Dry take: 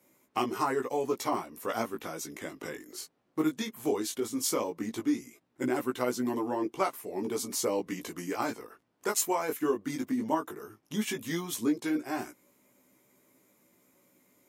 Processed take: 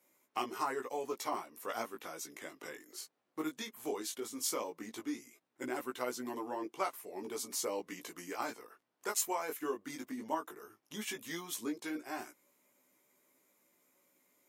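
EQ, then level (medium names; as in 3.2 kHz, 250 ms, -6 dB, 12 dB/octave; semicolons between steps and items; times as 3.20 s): bass shelf 120 Hz -5 dB; bass shelf 290 Hz -11.5 dB; -4.5 dB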